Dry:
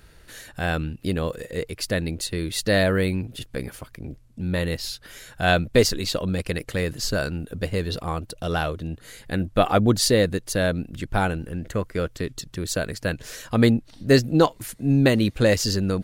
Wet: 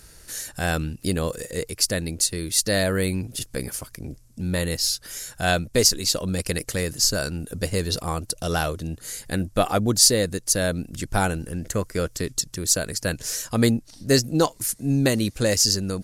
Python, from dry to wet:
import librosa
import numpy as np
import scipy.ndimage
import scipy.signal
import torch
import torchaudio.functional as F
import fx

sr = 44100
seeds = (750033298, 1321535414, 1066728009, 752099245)

p1 = fx.band_shelf(x, sr, hz=7900.0, db=13.0, octaves=1.7)
p2 = fx.rider(p1, sr, range_db=5, speed_s=0.5)
p3 = p1 + (p2 * 10.0 ** (-1.5 / 20.0))
y = p3 * 10.0 ** (-7.5 / 20.0)